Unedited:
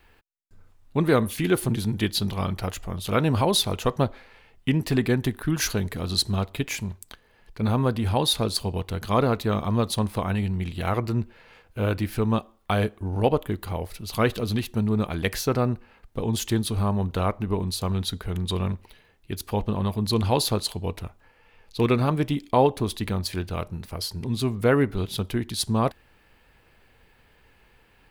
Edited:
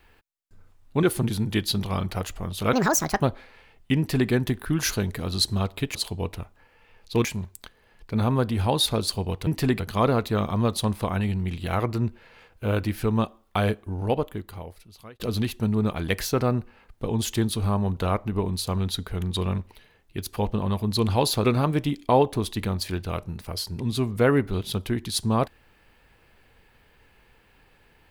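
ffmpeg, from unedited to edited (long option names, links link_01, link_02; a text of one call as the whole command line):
ffmpeg -i in.wav -filter_complex "[0:a]asplit=10[link_01][link_02][link_03][link_04][link_05][link_06][link_07][link_08][link_09][link_10];[link_01]atrim=end=1.032[link_11];[link_02]atrim=start=1.498:end=3.204[link_12];[link_03]atrim=start=3.2:end=3.99,asetpts=PTS-STARTPTS,asetrate=71442,aresample=44100[link_13];[link_04]atrim=start=3.986:end=6.722[link_14];[link_05]atrim=start=20.588:end=21.892[link_15];[link_06]atrim=start=6.718:end=8.942[link_16];[link_07]atrim=start=4.748:end=5.082[link_17];[link_08]atrim=start=8.938:end=14.34,asetpts=PTS-STARTPTS,afade=type=out:start_time=3.882:duration=1.52[link_18];[link_09]atrim=start=14.34:end=20.592,asetpts=PTS-STARTPTS,afade=type=in:duration=0.004:curve=hsin[link_19];[link_10]atrim=start=21.888[link_20];[link_11][link_12]acrossfade=duration=0.004:curve1=hsin:curve2=hsin[link_21];[link_21][link_13]acrossfade=duration=0.004:curve1=hsin:curve2=hsin[link_22];[link_22][link_14]acrossfade=duration=0.004:curve1=hsin:curve2=hsin[link_23];[link_23][link_15]acrossfade=duration=0.004:curve1=hsin:curve2=hsin[link_24];[link_24][link_16]acrossfade=duration=0.004:curve1=hsin:curve2=hsin[link_25];[link_25][link_17]acrossfade=duration=0.004:curve1=hsin:curve2=hsin[link_26];[link_18][link_19]concat=n=2:v=0:a=1[link_27];[link_26][link_27]acrossfade=duration=0.004:curve1=hsin:curve2=hsin[link_28];[link_28][link_20]acrossfade=duration=0.004:curve1=hsin:curve2=hsin" out.wav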